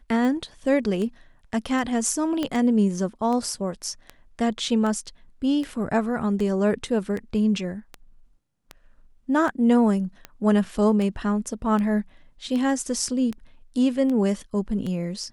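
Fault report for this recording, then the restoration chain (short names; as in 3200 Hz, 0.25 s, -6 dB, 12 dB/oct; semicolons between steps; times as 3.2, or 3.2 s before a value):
tick 78 rpm -19 dBFS
2.43 pop -14 dBFS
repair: de-click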